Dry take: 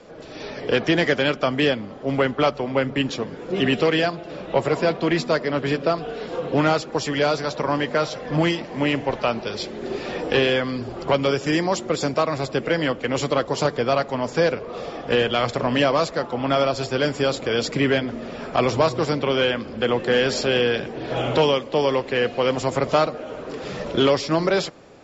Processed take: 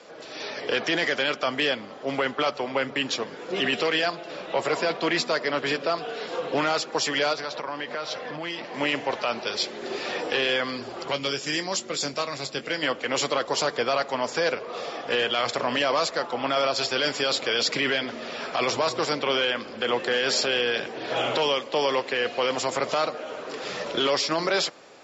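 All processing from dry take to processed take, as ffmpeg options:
-filter_complex "[0:a]asettb=1/sr,asplit=3[a][b][c];[a]atrim=end=7.334[d];[b]atrim=start=7.33:end=8.74,asetpts=PTS-STARTPTS,afade=t=in:d=0.004:c=qsin,afade=t=out:st=1.406:d=0.004:c=qsin,lowpass=4.8k,acompressor=threshold=-27dB:ratio=5:attack=3.2:release=140:knee=1:detection=peak[e];[c]atrim=start=8.736[f];[d][e]acrossfade=d=0.004:c1=hsin:c2=qsin[g];[g][f]acrossfade=d=0.004:c1=qsin:c2=hsin,asettb=1/sr,asplit=3[h][i][j];[h]atrim=end=11.084[k];[i]atrim=start=11.08:end=12.83,asetpts=PTS-STARTPTS,afade=t=in:d=0.004:c=qsin,afade=t=out:st=1.746:d=0.004:c=qsin,equalizer=f=860:w=0.41:g=-9,asplit=2[l][m];[m]adelay=21,volume=-10.5dB[n];[l][n]amix=inputs=2:normalize=0,atrim=end_sample=77175[o];[j]atrim=start=12.826[p];[k][o]acrossfade=d=0.004:c1=hsin:c2=qsin[q];[q][p]acrossfade=d=0.004:c1=qsin:c2=hsin,asettb=1/sr,asplit=3[r][s][t];[r]atrim=end=16.764[u];[s]atrim=start=16.76:end=18.67,asetpts=PTS-STARTPTS,afade=t=in:d=0.004:c=qsin,afade=t=out:st=1.906:d=0.004:c=qsin,lowpass=4.9k,highshelf=f=3.7k:g=10[v];[t]atrim=start=18.666[w];[u][v]acrossfade=d=0.004:c1=hsin:c2=qsin[x];[x][w]acrossfade=d=0.004:c1=qsin:c2=hsin,highpass=f=820:p=1,equalizer=f=4.7k:w=1.5:g=2,alimiter=limit=-17.5dB:level=0:latency=1:release=13,volume=3dB"

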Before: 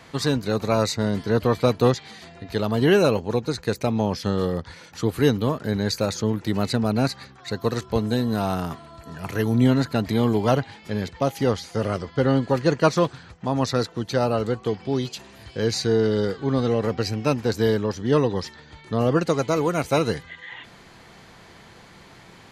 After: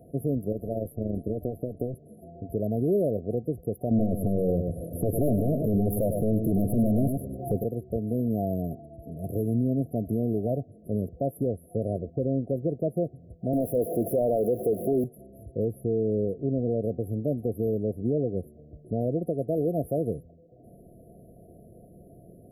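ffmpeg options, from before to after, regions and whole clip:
-filter_complex "[0:a]asettb=1/sr,asplit=3[a][b][c];[a]atrim=end=0.524[d];[b]atrim=start=0.52:end=1.94,asetpts=PTS-STARTPTS,afade=t=in:d=0.004:c=qsin,afade=t=out:st=1.416:d=0.004:c=qsin,acompressor=threshold=-19dB:ratio=12:attack=3.2:release=140:knee=1:detection=peak,tremolo=f=130:d=0.667[e];[c]atrim=start=1.936[f];[d][e]acrossfade=d=0.004:c1=hsin:c2=qsin[g];[g][f]acrossfade=d=0.004:c1=qsin:c2=hsin,asettb=1/sr,asplit=3[h][i][j];[h]atrim=end=3.914[k];[i]atrim=start=3.91:end=7.64,asetpts=PTS-STARTPTS,afade=t=in:d=0.004:c=qsin,afade=t=out:st=3.726:d=0.004:c=qsin,aeval=exprs='0.501*sin(PI/2*3.98*val(0)/0.501)':c=same,aecho=1:1:101:0.355,atrim=end_sample=164493[l];[j]atrim=start=7.636[m];[k][l]acrossfade=d=0.004:c1=hsin:c2=qsin[n];[n][m]acrossfade=d=0.004:c1=qsin:c2=hsin,asettb=1/sr,asplit=3[o][p][q];[o]atrim=end=13.534[r];[p]atrim=start=13.53:end=15.04,asetpts=PTS-STARTPTS,afade=t=in:d=0.004:c=qsin,afade=t=out:st=1.506:d=0.004:c=qsin,aeval=exprs='val(0)+0.5*0.0422*sgn(val(0))':c=same,highpass=f=110:p=1,asplit=2[s][t];[t]highpass=f=720:p=1,volume=20dB,asoftclip=type=tanh:threshold=-7.5dB[u];[s][u]amix=inputs=2:normalize=0,lowpass=f=4.7k:p=1,volume=-6dB[v];[q]atrim=start=15.036[w];[r][v]acrossfade=d=0.004:c1=hsin:c2=qsin[x];[x][w]acrossfade=d=0.004:c1=qsin:c2=hsin,afftfilt=real='re*(1-between(b*sr/4096,730,10000))':imag='im*(1-between(b*sr/4096,730,10000))':win_size=4096:overlap=0.75,alimiter=limit=-17dB:level=0:latency=1:release=307"

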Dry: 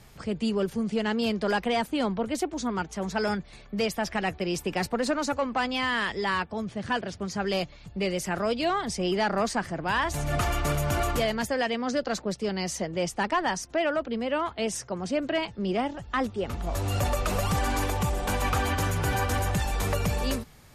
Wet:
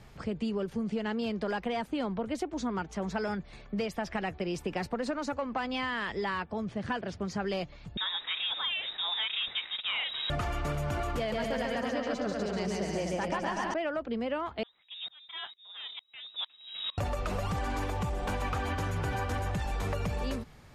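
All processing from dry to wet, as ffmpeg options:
-filter_complex "[0:a]asettb=1/sr,asplit=3[a][b][c];[a]atrim=end=7.974[d];[b]atrim=start=7.97:end=10.3,asetpts=PTS-STARTPTS,afade=t=in:d=0.004:c=qsin,afade=t=out:st=2.326:d=0.004:c=qsin,bandreject=f=50:t=h:w=6,bandreject=f=100:t=h:w=6,bandreject=f=150:t=h:w=6,bandreject=f=200:t=h:w=6,bandreject=f=250:t=h:w=6,bandreject=f=300:t=h:w=6,bandreject=f=350:t=h:w=6,bandreject=f=400:t=h:w=6,bandreject=f=450:t=h:w=6,acrusher=bits=5:mix=0:aa=0.5,lowpass=f=3.3k:t=q:w=0.5098,lowpass=f=3.3k:t=q:w=0.6013,lowpass=f=3.3k:t=q:w=0.9,lowpass=f=3.3k:t=q:w=2.563,afreqshift=-3900[e];[c]atrim=start=10.296[f];[d][e]acrossfade=d=0.004:c1=hsin:c2=qsin[g];[g][f]acrossfade=d=0.004:c1=qsin:c2=hsin,asettb=1/sr,asplit=3[h][i][j];[h]atrim=end=11.184[k];[i]atrim=start=11.18:end=13.74,asetpts=PTS-STARTPTS,afade=t=in:d=0.004:c=qsin,afade=t=out:st=2.556:d=0.004:c=qsin,asoftclip=type=hard:threshold=-19dB,aecho=1:1:140|245|323.8|382.8|427.1|460.3:0.794|0.631|0.501|0.398|0.316|0.251,atrim=end_sample=112896[l];[j]atrim=start=13.736[m];[k][l]acrossfade=d=0.004:c1=hsin:c2=qsin[n];[n][m]acrossfade=d=0.004:c1=qsin:c2=hsin,asettb=1/sr,asplit=3[o][p][q];[o]atrim=end=14.634[r];[p]atrim=start=14.63:end=16.98,asetpts=PTS-STARTPTS,afade=t=in:d=0.004:c=qsin,afade=t=out:st=2.346:d=0.004:c=qsin,aeval=exprs='clip(val(0),-1,0.0531)':c=same,lowpass=f=3.3k:t=q:w=0.5098,lowpass=f=3.3k:t=q:w=0.6013,lowpass=f=3.3k:t=q:w=0.9,lowpass=f=3.3k:t=q:w=2.563,afreqshift=-3900,aeval=exprs='val(0)*pow(10,-28*if(lt(mod(-2.2*n/s,1),2*abs(-2.2)/1000),1-mod(-2.2*n/s,1)/(2*abs(-2.2)/1000),(mod(-2.2*n/s,1)-2*abs(-2.2)/1000)/(1-2*abs(-2.2)/1000))/20)':c=same[s];[q]atrim=start=16.976[t];[r][s]acrossfade=d=0.004:c1=hsin:c2=qsin[u];[u][t]acrossfade=d=0.004:c1=qsin:c2=hsin,aemphasis=mode=reproduction:type=50kf,acompressor=threshold=-29dB:ratio=6"

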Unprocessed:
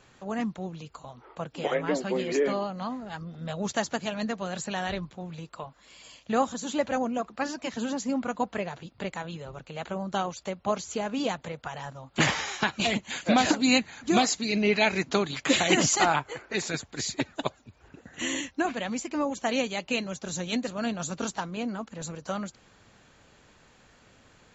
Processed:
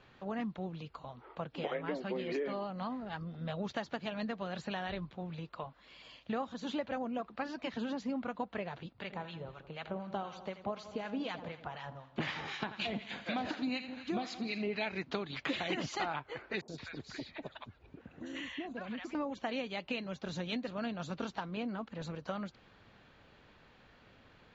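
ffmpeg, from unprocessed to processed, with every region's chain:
-filter_complex "[0:a]asettb=1/sr,asplit=3[a][b][c];[a]atrim=end=8.934[d];[b]atrim=start=8.93:end=14.75,asetpts=PTS-STARTPTS,afade=t=in:d=0.004:c=qsin,afade=t=out:st=5.816:d=0.004:c=qsin,highpass=43,aecho=1:1:83|166|249|332|415|498:0.211|0.12|0.0687|0.0391|0.0223|0.0127,atrim=end_sample=256662,acrossover=split=1100[e][f];[e]aeval=exprs='val(0)*(1-0.7/2+0.7/2*cos(2*PI*4*n/s))':c=same[g];[f]aeval=exprs='val(0)*(1-0.7/2-0.7/2*cos(2*PI*4*n/s))':c=same[h];[g][h]amix=inputs=2:normalize=0[i];[c]atrim=start=14.746[j];[d][i]acrossfade=d=0.004:c1=hsin:c2=qsin[k];[k][j]acrossfade=d=0.004:c1=qsin:c2=hsin,asettb=1/sr,asplit=3[l][m][n];[l]atrim=end=16.614[o];[m]atrim=start=16.61:end=19.15,asetpts=PTS-STARTPTS,afade=t=in:d=0.004:c=qsin,afade=t=out:st=2.536:d=0.004:c=qsin,acompressor=threshold=-34dB:ratio=4:attack=3.2:release=140:knee=1:detection=peak,acrossover=split=820|4300[p][q][r];[r]adelay=70[s];[q]adelay=170[t];[p][t][s]amix=inputs=3:normalize=0,atrim=end_sample=112014[u];[n]atrim=start=19.146[v];[o][u]acrossfade=d=0.004:c1=hsin:c2=qsin[w];[w][v]acrossfade=d=0.004:c1=qsin:c2=hsin,lowpass=f=4.3k:w=0.5412,lowpass=f=4.3k:w=1.3066,acompressor=threshold=-31dB:ratio=4,volume=-3dB"

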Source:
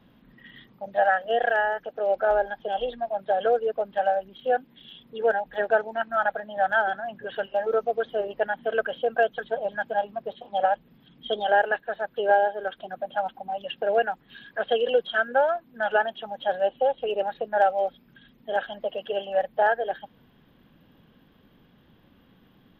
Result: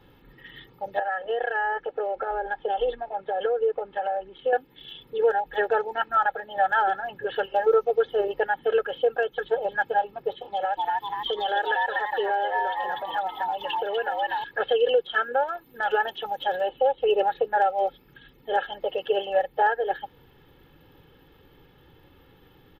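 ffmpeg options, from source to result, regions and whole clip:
-filter_complex "[0:a]asettb=1/sr,asplit=3[a][b][c];[a]atrim=end=0.994[d];[b]atrim=start=0.99:end=4.53,asetpts=PTS-STARTPTS,afade=t=in:d=0.004:c=qsin,afade=t=out:st=3.536:d=0.004:c=qsin,lowpass=2.9k,equalizer=f=88:t=o:w=1.6:g=-5.5,acompressor=threshold=-26dB:ratio=12:attack=3.2:release=140:knee=1:detection=peak[e];[c]atrim=start=4.526[f];[d][e]acrossfade=d=0.004:c1=hsin:c2=qsin[g];[g][f]acrossfade=d=0.004:c1=qsin:c2=hsin,asettb=1/sr,asplit=3[h][i][j];[h]atrim=end=10.524[k];[i]atrim=start=10.52:end=14.44,asetpts=PTS-STARTPTS,afade=t=in:d=0.004:c=qsin,afade=t=out:st=3.916:d=0.004:c=qsin,asplit=5[l][m][n][o][p];[m]adelay=244,afreqshift=120,volume=-4dB[q];[n]adelay=488,afreqshift=240,volume=-13.9dB[r];[o]adelay=732,afreqshift=360,volume=-23.8dB[s];[p]adelay=976,afreqshift=480,volume=-33.7dB[t];[l][q][r][s][t]amix=inputs=5:normalize=0,atrim=end_sample=172872,acompressor=threshold=-32dB:ratio=2.5:attack=3.2:release=140:knee=1:detection=peak,highshelf=f=2.6k:g=8.5[u];[j]atrim=start=14.436[v];[k][u]acrossfade=d=0.004:c1=hsin:c2=qsin[w];[w][v]acrossfade=d=0.004:c1=qsin:c2=hsin,asettb=1/sr,asplit=3[x][y][z];[x]atrim=end=15.434[aa];[y]atrim=start=15.43:end=16.69,asetpts=PTS-STARTPTS,afade=t=in:d=0.004:c=qsin,afade=t=out:st=1.256:d=0.004:c=qsin,aemphasis=mode=production:type=cd,acompressor=threshold=-23dB:ratio=5:attack=3.2:release=140:knee=1:detection=peak[ab];[z]atrim=start=16.686[ac];[aa][ab]acrossfade=d=0.004:c1=hsin:c2=qsin[ad];[ad][ac]acrossfade=d=0.004:c1=qsin:c2=hsin,aecho=1:1:2.3:0.76,alimiter=limit=-15.5dB:level=0:latency=1:release=317,volume=3dB"

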